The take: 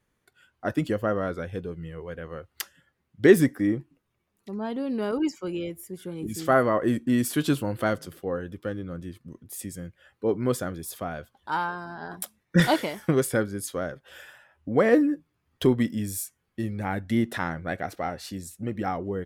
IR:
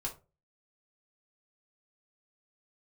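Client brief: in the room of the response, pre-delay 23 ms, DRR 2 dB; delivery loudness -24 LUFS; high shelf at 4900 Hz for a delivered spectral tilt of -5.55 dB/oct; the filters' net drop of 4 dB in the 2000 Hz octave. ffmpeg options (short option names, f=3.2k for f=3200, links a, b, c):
-filter_complex "[0:a]equalizer=f=2k:t=o:g=-6,highshelf=f=4.9k:g=6,asplit=2[a][b];[1:a]atrim=start_sample=2205,adelay=23[c];[b][c]afir=irnorm=-1:irlink=0,volume=-3dB[d];[a][d]amix=inputs=2:normalize=0,volume=1dB"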